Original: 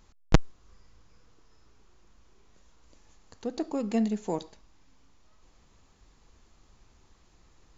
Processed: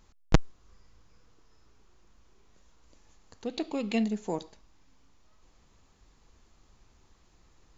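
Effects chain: 3.46–4.04 s: high-order bell 3 kHz +11.5 dB 1.2 oct; trim -1.5 dB

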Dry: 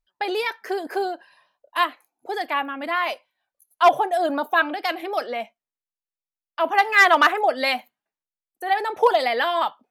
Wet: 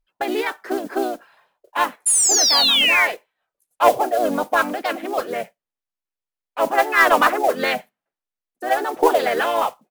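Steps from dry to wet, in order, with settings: treble shelf 5 kHz -11.5 dB; painted sound fall, 2.06–3.06 s, 2.1–11 kHz -18 dBFS; modulation noise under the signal 20 dB; in parallel at -9.5 dB: hard clipper -19 dBFS, distortion -8 dB; on the sum: harmony voices -7 st -9 dB, -3 st -3 dB; trim -2 dB

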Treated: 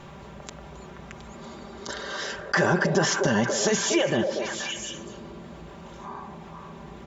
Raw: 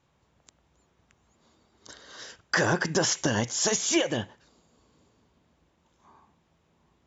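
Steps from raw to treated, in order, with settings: treble shelf 4 kHz -11.5 dB; comb 5.1 ms, depth 59%; repeats whose band climbs or falls 239 ms, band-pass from 500 Hz, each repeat 1.4 oct, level -6 dB; on a send at -23.5 dB: reverberation RT60 2.0 s, pre-delay 130 ms; on the sum: level flattener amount 50%

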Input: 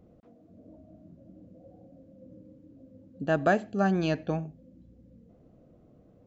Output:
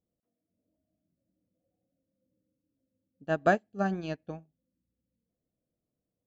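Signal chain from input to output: upward expansion 2.5:1, over -40 dBFS; trim +1.5 dB

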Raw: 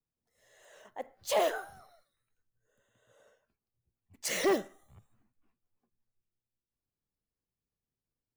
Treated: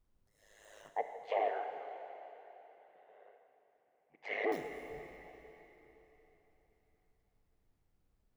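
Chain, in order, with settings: compression 5:1, threshold -36 dBFS, peak gain reduction 11 dB; ring modulator 52 Hz; added noise brown -77 dBFS; 0.90–4.52 s: cabinet simulation 370–2600 Hz, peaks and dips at 430 Hz +9 dB, 750 Hz +10 dB, 1.4 kHz -6 dB, 2.1 kHz +8 dB; reverberation RT60 3.8 s, pre-delay 34 ms, DRR 6.5 dB; trim +2 dB

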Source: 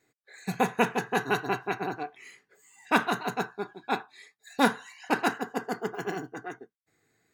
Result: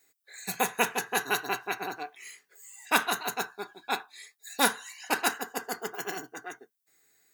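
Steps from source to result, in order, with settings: RIAA curve recording; trim -1.5 dB

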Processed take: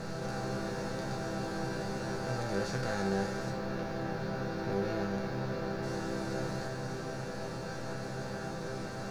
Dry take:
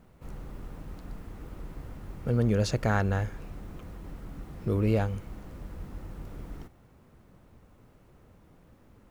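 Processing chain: spectral levelling over time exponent 0.2; 3.50–5.83 s: peaking EQ 8.3 kHz -13.5 dB 0.92 oct; chord resonator C3 major, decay 0.43 s; trim +4.5 dB

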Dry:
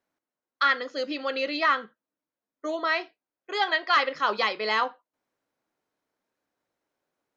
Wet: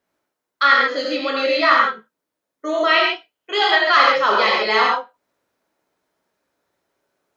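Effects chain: 2.87–3.61 s: peaking EQ 3 kHz +12.5 dB 0.34 oct; gated-style reverb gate 170 ms flat, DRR -3.5 dB; trim +4.5 dB

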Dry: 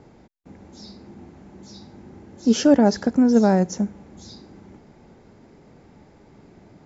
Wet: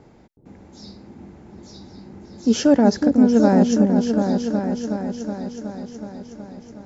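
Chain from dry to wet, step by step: delay with an opening low-pass 370 ms, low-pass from 400 Hz, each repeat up 2 oct, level -3 dB

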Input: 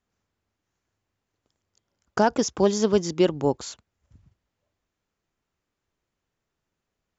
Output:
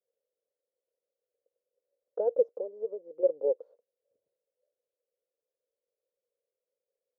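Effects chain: 2.51–3.23 s: compression 12:1, threshold -26 dBFS, peak gain reduction 12.5 dB; saturation -11 dBFS, distortion -18 dB; Butterworth band-pass 510 Hz, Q 4.9; trim +6 dB

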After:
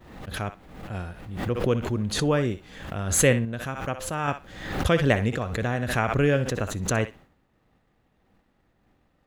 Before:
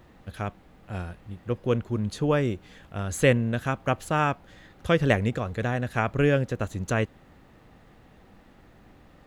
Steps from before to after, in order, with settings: thinning echo 62 ms, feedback 17%, high-pass 790 Hz, level -10 dB; expander -43 dBFS; 3.45–4.28 s: feedback comb 520 Hz, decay 0.58 s, mix 50%; swell ahead of each attack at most 63 dB/s

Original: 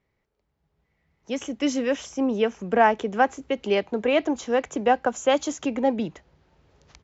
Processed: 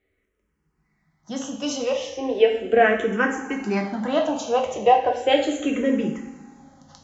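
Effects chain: two-slope reverb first 0.7 s, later 3.2 s, from -18 dB, DRR 0.5 dB; barber-pole phaser -0.36 Hz; trim +3 dB

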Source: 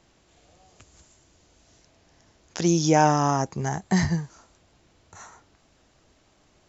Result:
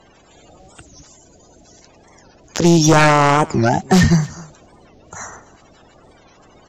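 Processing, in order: coarse spectral quantiser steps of 30 dB; in parallel at -3 dB: gain riding 2 s; on the sum: sine folder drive 10 dB, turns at -1.5 dBFS; delay 261 ms -23.5 dB; warped record 45 rpm, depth 250 cents; trim -5 dB

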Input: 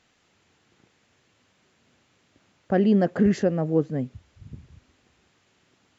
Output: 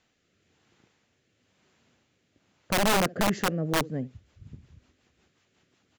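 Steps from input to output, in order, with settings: rotary cabinet horn 1 Hz, later 5.5 Hz, at 3.06 s; delay 71 ms -22 dB; integer overflow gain 16 dB; trim -2 dB

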